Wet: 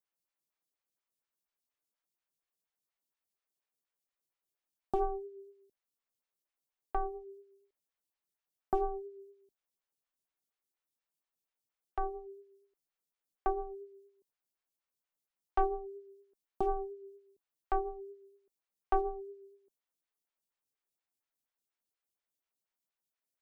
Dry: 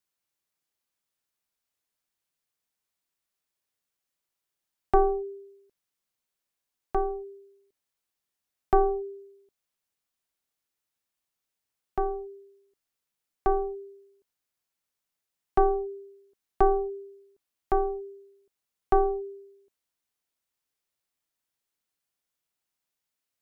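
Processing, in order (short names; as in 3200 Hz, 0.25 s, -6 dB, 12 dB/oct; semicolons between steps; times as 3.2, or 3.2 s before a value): dynamic EQ 400 Hz, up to -5 dB, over -35 dBFS, Q 1.2; in parallel at -7.5 dB: hard clip -21.5 dBFS, distortion -11 dB; on the sum: photocell phaser 4.2 Hz; gain -6.5 dB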